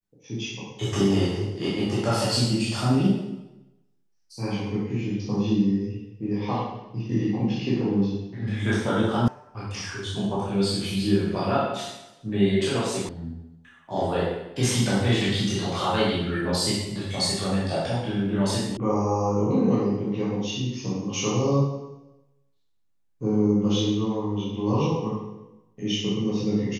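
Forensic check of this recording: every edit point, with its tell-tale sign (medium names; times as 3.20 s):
9.28 s: sound stops dead
13.09 s: sound stops dead
18.77 s: sound stops dead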